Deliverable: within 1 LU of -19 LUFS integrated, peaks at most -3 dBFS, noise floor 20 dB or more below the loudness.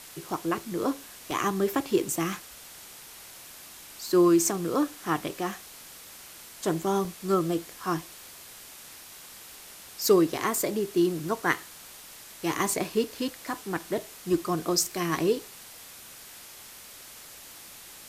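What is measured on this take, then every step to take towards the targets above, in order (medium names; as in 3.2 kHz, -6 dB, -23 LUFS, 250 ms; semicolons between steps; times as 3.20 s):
dropouts 5; longest dropout 1.2 ms; noise floor -47 dBFS; noise floor target -48 dBFS; loudness -28.0 LUFS; peak level -9.5 dBFS; loudness target -19.0 LUFS
-> interpolate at 0.34/1.31/5.17/7.05/15.15 s, 1.2 ms; noise print and reduce 6 dB; trim +9 dB; peak limiter -3 dBFS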